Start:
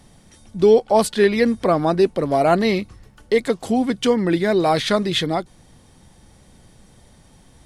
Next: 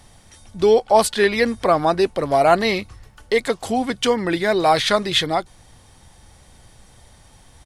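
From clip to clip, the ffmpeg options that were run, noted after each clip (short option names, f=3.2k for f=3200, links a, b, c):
-af "firequalizer=gain_entry='entry(100,0);entry(170,-8);entry(770,1)':delay=0.05:min_phase=1,volume=2.5dB"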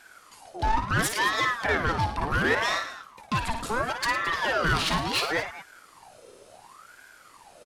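-af "asoftclip=type=tanh:threshold=-16.5dB,aecho=1:1:55|108|219:0.422|0.237|0.168,aeval=exprs='val(0)*sin(2*PI*1000*n/s+1000*0.55/0.71*sin(2*PI*0.71*n/s))':c=same,volume=-1.5dB"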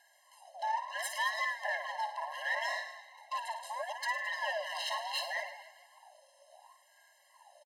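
-filter_complex "[0:a]asplit=6[a][b][c][d][e][f];[b]adelay=153,afreqshift=72,volume=-17.5dB[g];[c]adelay=306,afreqshift=144,volume=-22.4dB[h];[d]adelay=459,afreqshift=216,volume=-27.3dB[i];[e]adelay=612,afreqshift=288,volume=-32.1dB[j];[f]adelay=765,afreqshift=360,volume=-37dB[k];[a][g][h][i][j][k]amix=inputs=6:normalize=0,afftfilt=real='re*eq(mod(floor(b*sr/1024/540),2),1)':imag='im*eq(mod(floor(b*sr/1024/540),2),1)':win_size=1024:overlap=0.75,volume=-7dB"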